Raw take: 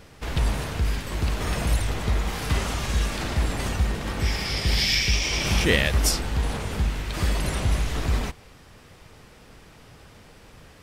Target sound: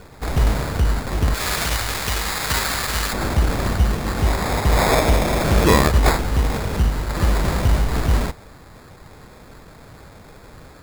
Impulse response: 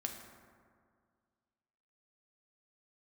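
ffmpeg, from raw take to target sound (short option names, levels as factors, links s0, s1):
-filter_complex "[0:a]acrusher=samples=15:mix=1:aa=0.000001,asettb=1/sr,asplit=3[s0][s1][s2];[s0]atrim=end=1.344[s3];[s1]atrim=start=1.34:end=3.13,asetpts=PTS-STARTPTS,afade=t=in:d=0.004:c=qsin,afade=t=out:st=1.786:d=0.004:c=qsin,tiltshelf=f=970:g=-9[s4];[s2]atrim=start=3.126[s5];[s3][s4]acrossfade=d=0.004:c1=hsin:c2=qsin[s6];[s6][s5]acrossfade=d=0.004:c1=qsin:c2=hsin,volume=2"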